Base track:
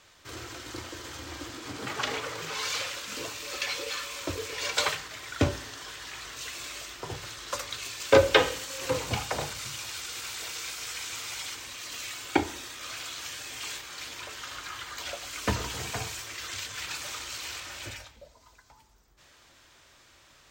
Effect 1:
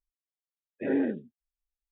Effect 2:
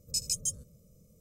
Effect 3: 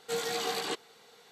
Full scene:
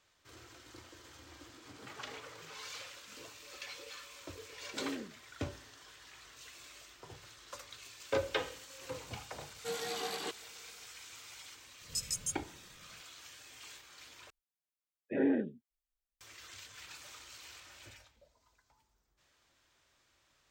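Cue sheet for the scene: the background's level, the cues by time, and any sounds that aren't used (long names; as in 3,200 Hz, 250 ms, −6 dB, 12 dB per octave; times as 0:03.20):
base track −14.5 dB
0:03.92: mix in 1 −14 dB
0:09.56: mix in 3 −6 dB
0:11.81: mix in 2 −5 dB
0:14.30: overwrite with 1 −3 dB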